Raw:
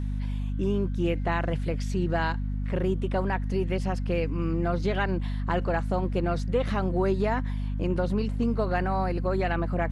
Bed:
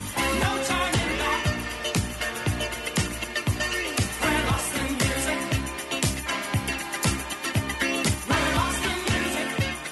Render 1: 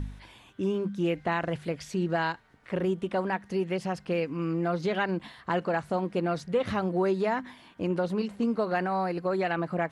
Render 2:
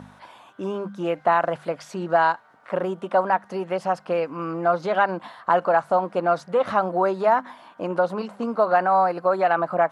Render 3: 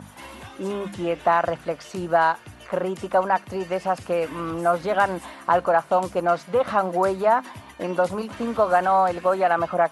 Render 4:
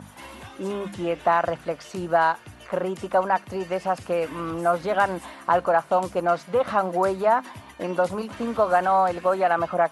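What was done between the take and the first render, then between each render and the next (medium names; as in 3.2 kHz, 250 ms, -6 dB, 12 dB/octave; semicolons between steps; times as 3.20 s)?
de-hum 50 Hz, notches 5
high-pass 180 Hz 12 dB/octave; high-order bell 900 Hz +11.5 dB
add bed -17.5 dB
trim -1 dB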